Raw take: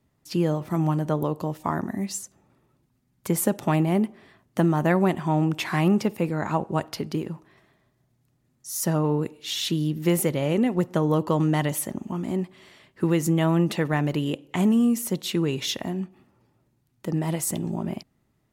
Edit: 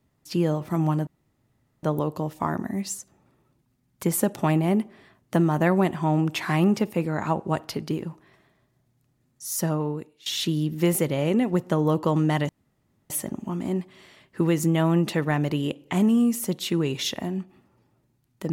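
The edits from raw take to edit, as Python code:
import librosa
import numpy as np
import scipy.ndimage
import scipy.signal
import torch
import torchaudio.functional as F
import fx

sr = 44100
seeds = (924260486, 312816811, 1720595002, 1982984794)

y = fx.edit(x, sr, fx.insert_room_tone(at_s=1.07, length_s=0.76),
    fx.fade_out_to(start_s=8.79, length_s=0.71, floor_db=-19.5),
    fx.insert_room_tone(at_s=11.73, length_s=0.61), tone=tone)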